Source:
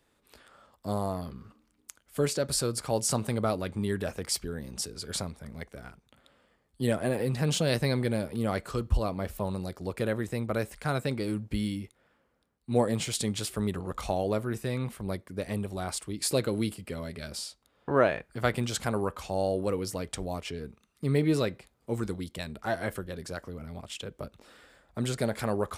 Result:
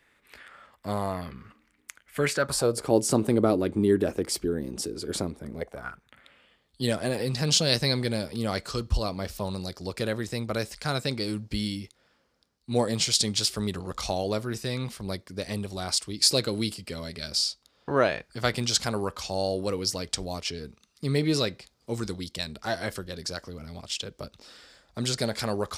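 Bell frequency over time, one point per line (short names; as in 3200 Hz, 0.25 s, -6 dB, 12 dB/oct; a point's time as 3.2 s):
bell +14.5 dB 1.1 oct
2.29 s 2000 Hz
2.9 s 330 Hz
5.52 s 330 Hz
5.87 s 1300 Hz
6.92 s 5000 Hz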